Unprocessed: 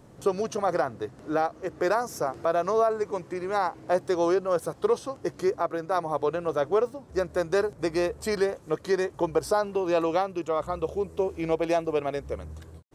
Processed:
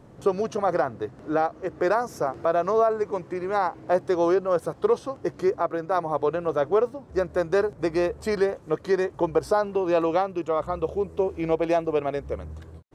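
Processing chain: high shelf 4300 Hz -10 dB; gain +2.5 dB

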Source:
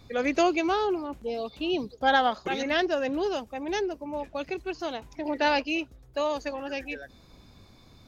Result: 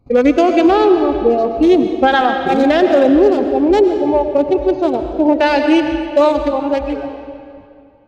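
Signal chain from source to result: Wiener smoothing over 25 samples; gate -50 dBFS, range -24 dB; harmonic-percussive split percussive -12 dB; reverb removal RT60 1 s; compressor, threshold -29 dBFS, peak gain reduction 11 dB; digital reverb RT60 2.4 s, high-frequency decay 0.8×, pre-delay 70 ms, DRR 6.5 dB; maximiser +23 dB; gain -1 dB

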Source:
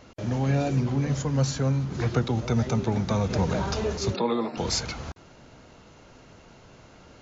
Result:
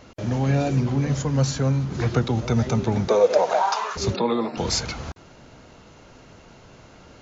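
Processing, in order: 3.07–3.95 resonant high-pass 390 Hz -> 1200 Hz, resonance Q 5.6; gain +3 dB

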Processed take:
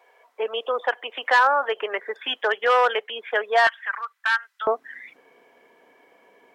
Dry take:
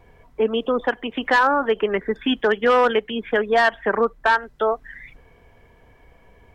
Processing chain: HPF 520 Hz 24 dB/oct, from 3.67 s 1300 Hz, from 4.67 s 270 Hz

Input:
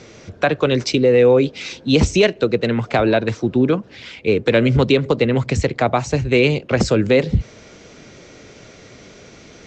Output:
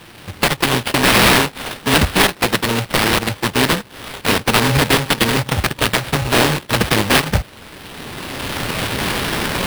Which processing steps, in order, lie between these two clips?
FFT order left unsorted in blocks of 64 samples; recorder AGC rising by 16 dB/s; sample-rate reducer 5700 Hz, jitter 20%; formant shift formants +3 st

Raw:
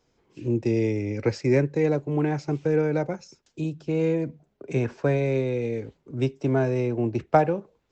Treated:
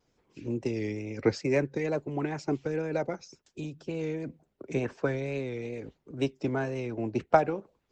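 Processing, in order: harmonic-percussive split harmonic -10 dB; wow and flutter 76 cents

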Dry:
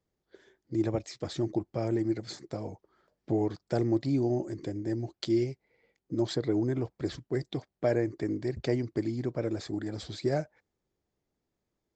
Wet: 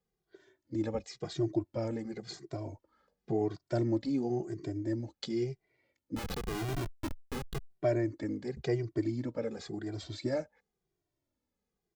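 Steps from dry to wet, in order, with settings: 6.16–7.7 Schmitt trigger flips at -31 dBFS; endless flanger 2 ms -0.94 Hz

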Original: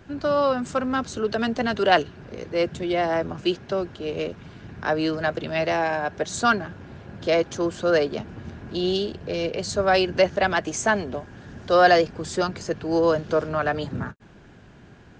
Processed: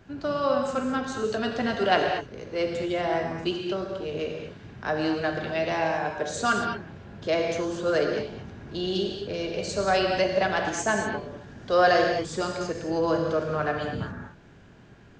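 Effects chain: non-linear reverb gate 0.26 s flat, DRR 1.5 dB; gain -5 dB

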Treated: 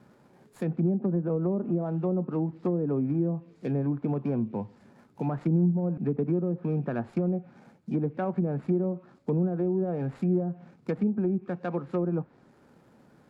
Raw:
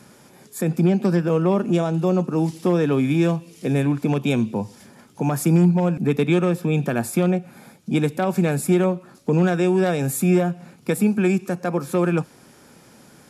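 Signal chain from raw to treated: median filter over 15 samples; treble ducked by the level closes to 490 Hz, closed at -14.5 dBFS; gain -7.5 dB

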